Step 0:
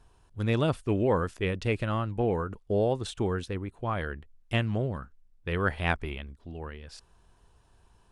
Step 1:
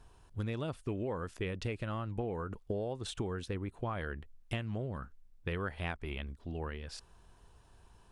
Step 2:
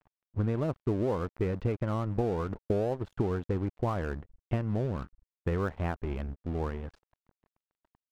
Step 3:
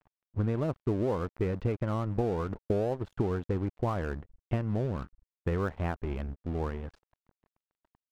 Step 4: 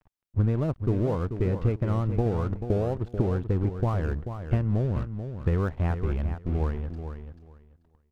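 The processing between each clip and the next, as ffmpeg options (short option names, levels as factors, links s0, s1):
-af "acompressor=threshold=0.02:ratio=12,volume=1.12"
-af "lowpass=1100,aeval=exprs='sgn(val(0))*max(abs(val(0))-0.00251,0)':c=same,volume=2.66"
-af anull
-af "lowshelf=f=160:g=10,aecho=1:1:437|874|1311:0.355|0.0639|0.0115"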